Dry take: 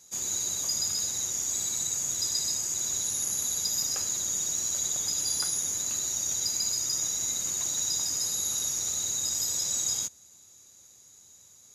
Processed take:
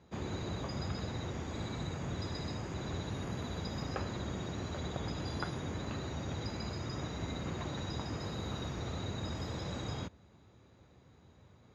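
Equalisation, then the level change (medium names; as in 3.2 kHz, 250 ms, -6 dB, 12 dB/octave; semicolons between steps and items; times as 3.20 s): distance through air 380 m; RIAA curve playback; bass shelf 140 Hz -11 dB; +7.0 dB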